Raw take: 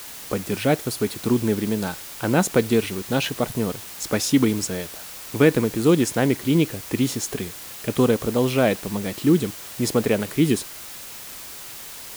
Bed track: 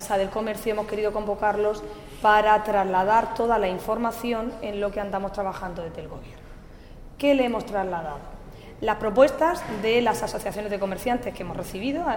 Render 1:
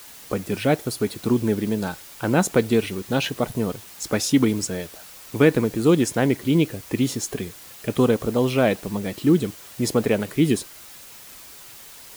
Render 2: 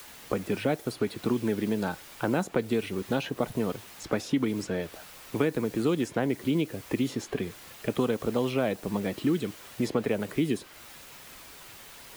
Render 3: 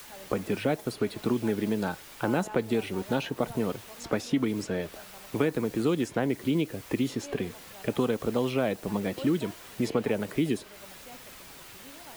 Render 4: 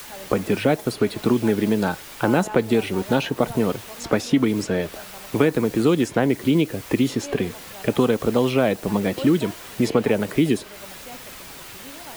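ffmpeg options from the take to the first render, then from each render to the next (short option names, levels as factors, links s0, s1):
-af "afftdn=nr=6:nf=-38"
-filter_complex "[0:a]acrossover=split=180|1400|3600[s0][s1][s2][s3];[s0]acompressor=threshold=0.01:ratio=4[s4];[s1]acompressor=threshold=0.0562:ratio=4[s5];[s2]acompressor=threshold=0.00891:ratio=4[s6];[s3]acompressor=threshold=0.00355:ratio=4[s7];[s4][s5][s6][s7]amix=inputs=4:normalize=0"
-filter_complex "[1:a]volume=0.0562[s0];[0:a][s0]amix=inputs=2:normalize=0"
-af "volume=2.51"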